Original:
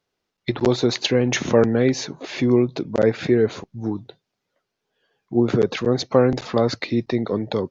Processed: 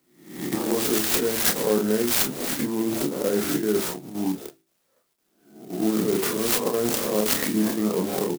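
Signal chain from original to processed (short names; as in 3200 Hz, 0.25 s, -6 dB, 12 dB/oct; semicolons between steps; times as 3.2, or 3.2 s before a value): spectral swells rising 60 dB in 0.53 s; chopper 2.1 Hz, depth 65%, duty 90%; notches 60/120/180/240/300/360/420 Hz; speed mistake 48 kHz file played as 44.1 kHz; resonant high shelf 3900 Hz +8.5 dB, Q 3; reverse; compressor 6:1, threshold -20 dBFS, peak gain reduction 12 dB; reverse; HPF 160 Hz 24 dB/oct; on a send: early reflections 28 ms -5 dB, 42 ms -11 dB; on the sum: clock jitter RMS 0.077 ms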